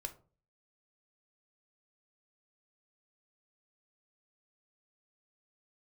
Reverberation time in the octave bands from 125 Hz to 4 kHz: 0.55, 0.45, 0.45, 0.35, 0.25, 0.20 s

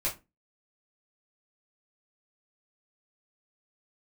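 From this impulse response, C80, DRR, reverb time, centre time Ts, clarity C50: 20.5 dB, -7.0 dB, 0.25 s, 19 ms, 12.5 dB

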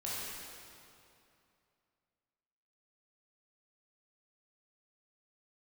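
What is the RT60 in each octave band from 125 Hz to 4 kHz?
2.9, 2.8, 2.7, 2.6, 2.3, 2.1 s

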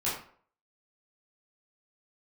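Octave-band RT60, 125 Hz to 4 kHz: 0.45, 0.50, 0.55, 0.50, 0.45, 0.35 s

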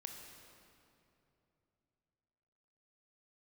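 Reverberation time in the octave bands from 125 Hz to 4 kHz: 3.9, 3.4, 3.2, 2.7, 2.3, 1.9 s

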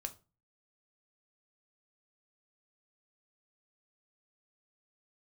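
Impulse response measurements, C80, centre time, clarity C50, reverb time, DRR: 23.5 dB, 5 ms, 17.5 dB, 0.30 s, 7.5 dB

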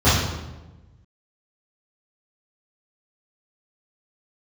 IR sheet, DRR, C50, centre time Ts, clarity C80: -14.5 dB, 0.0 dB, 72 ms, 4.0 dB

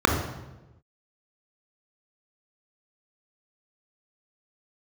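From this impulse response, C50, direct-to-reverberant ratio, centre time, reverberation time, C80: 5.5 dB, 3.0 dB, 31 ms, 1.1 s, 8.0 dB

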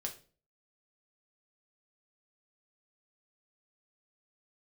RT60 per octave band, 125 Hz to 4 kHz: 0.55, 0.55, 0.45, 0.35, 0.35, 0.35 s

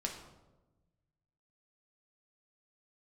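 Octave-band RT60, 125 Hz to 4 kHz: 2.0, 1.5, 1.2, 0.95, 0.70, 0.65 s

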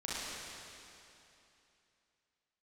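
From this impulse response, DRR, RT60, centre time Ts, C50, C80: -8.5 dB, 2.9 s, 0.211 s, -6.0 dB, -3.0 dB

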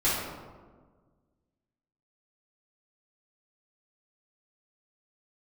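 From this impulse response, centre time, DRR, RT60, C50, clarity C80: 87 ms, -13.0 dB, 1.5 s, -0.5 dB, 2.5 dB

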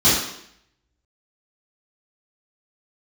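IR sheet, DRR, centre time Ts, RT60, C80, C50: -11.5 dB, 59 ms, 0.70 s, 5.0 dB, 1.0 dB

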